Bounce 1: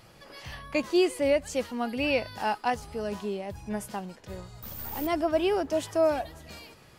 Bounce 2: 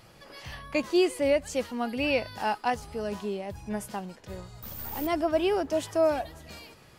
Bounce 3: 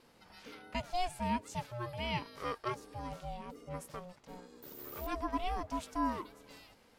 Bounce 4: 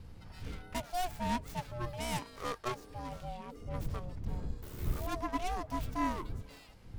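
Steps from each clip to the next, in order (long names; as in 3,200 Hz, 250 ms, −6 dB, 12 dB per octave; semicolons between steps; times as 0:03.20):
no processing that can be heard
ring modulation 360 Hz; level −7 dB
stylus tracing distortion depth 0.28 ms; wind on the microphone 90 Hz −42 dBFS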